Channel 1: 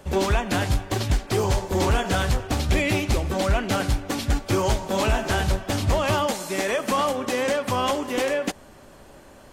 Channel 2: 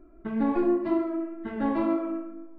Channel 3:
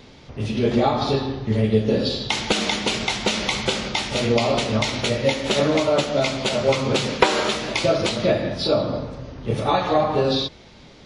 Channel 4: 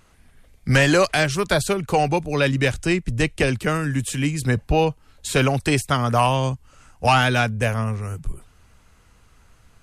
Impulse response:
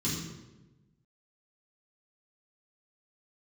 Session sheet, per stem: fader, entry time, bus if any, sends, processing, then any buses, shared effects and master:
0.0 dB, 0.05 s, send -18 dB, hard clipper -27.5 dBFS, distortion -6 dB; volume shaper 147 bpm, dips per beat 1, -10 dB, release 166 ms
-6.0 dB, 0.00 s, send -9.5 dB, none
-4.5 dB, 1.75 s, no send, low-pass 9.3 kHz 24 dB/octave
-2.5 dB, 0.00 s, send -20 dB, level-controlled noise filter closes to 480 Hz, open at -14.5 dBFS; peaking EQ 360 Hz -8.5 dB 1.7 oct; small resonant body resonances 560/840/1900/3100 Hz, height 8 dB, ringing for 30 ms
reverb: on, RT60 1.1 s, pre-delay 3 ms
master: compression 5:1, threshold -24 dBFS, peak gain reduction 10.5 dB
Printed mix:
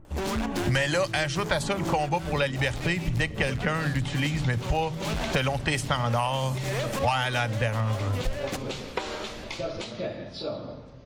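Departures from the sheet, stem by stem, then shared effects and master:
stem 3 -4.5 dB -> -13.0 dB; stem 4 -2.5 dB -> +6.5 dB; reverb return -7.5 dB

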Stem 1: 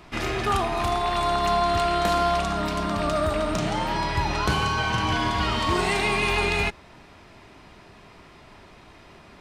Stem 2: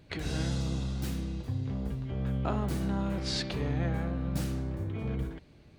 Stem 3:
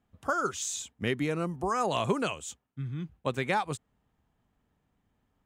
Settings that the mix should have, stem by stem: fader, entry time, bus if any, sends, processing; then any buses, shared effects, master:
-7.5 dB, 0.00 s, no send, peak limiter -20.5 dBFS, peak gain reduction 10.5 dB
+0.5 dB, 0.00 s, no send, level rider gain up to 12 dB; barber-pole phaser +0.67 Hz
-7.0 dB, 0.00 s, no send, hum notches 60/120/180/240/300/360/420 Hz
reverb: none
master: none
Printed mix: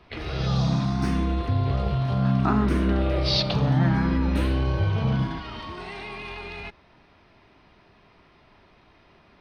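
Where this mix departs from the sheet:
stem 3 -7.0 dB -> -16.0 dB; master: extra Savitzky-Golay filter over 15 samples

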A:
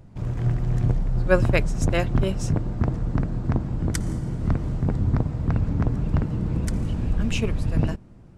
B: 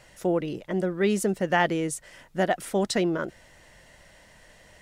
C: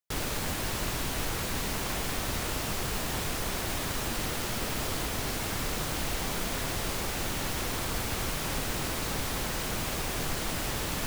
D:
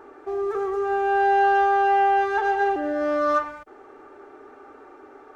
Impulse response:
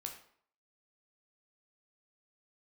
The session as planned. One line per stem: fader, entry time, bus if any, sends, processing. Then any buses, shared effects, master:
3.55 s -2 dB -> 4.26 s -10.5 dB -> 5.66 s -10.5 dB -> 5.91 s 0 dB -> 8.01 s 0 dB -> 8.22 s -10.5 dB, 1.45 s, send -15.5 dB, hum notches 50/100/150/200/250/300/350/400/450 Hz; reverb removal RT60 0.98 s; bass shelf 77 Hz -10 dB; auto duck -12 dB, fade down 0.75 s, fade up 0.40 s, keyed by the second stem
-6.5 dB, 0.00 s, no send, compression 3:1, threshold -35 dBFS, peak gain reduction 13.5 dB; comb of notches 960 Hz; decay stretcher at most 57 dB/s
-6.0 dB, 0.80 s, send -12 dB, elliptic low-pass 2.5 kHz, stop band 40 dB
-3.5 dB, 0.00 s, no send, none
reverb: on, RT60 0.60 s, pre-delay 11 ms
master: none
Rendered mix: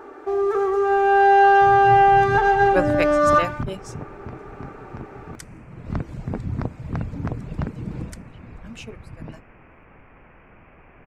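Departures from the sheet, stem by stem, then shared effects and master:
stem B: muted; stem C -6.0 dB -> -16.5 dB; stem D -3.5 dB -> +5.0 dB

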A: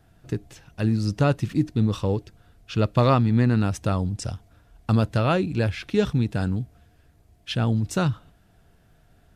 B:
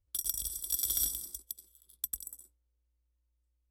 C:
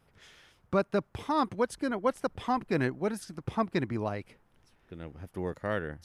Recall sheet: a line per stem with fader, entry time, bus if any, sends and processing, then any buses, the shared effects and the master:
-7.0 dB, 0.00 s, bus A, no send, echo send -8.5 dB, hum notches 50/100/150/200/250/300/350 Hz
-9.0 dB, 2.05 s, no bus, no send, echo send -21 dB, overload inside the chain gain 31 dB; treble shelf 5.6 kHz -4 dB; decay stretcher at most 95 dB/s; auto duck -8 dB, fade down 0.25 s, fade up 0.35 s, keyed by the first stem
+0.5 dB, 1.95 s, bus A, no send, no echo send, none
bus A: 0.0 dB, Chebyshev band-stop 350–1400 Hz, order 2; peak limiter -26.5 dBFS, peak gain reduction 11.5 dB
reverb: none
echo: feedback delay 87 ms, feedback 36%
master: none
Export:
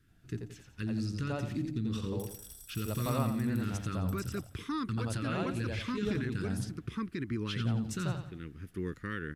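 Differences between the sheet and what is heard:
stem B -9.0 dB -> -1.5 dB; stem C: entry 1.95 s -> 3.40 s

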